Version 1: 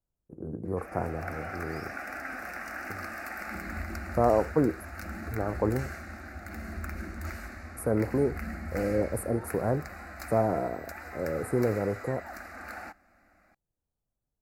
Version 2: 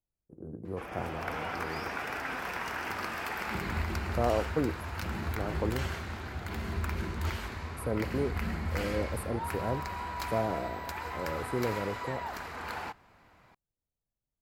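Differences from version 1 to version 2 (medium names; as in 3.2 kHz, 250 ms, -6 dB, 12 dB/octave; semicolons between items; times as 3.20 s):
speech -5.5 dB; background: remove static phaser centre 650 Hz, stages 8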